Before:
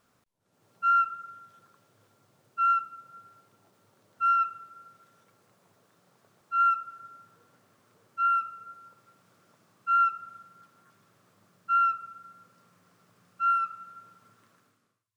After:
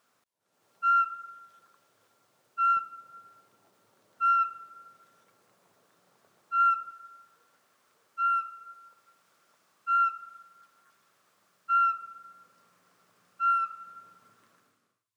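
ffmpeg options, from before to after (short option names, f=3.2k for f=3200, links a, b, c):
-af "asetnsamples=n=441:p=0,asendcmd='2.77 highpass f 290;6.91 highpass f 950;11.7 highpass f 450;13.85 highpass f 230',highpass=f=580:p=1"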